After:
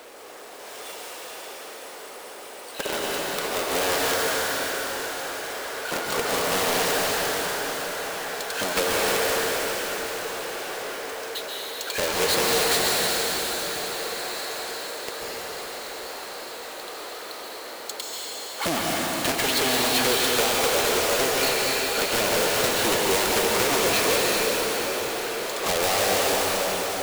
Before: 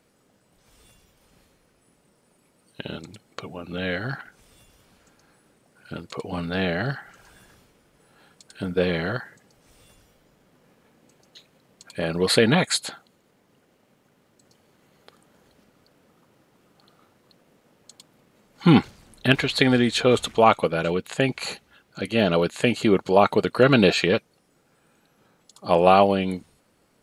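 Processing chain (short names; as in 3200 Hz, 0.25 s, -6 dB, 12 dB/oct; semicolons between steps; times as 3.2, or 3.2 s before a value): half-waves squared off; HPF 420 Hz 24 dB/oct; limiter -4.5 dBFS, peak gain reduction 9 dB; compressor 4:1, threshold -33 dBFS, peak gain reduction 16.5 dB; diffused feedback echo 1.644 s, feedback 47%, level -14.5 dB; wrapped overs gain 25.5 dB; plate-style reverb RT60 4.4 s, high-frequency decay 0.95×, pre-delay 0.12 s, DRR -3.5 dB; power-law curve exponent 0.7; gain +5.5 dB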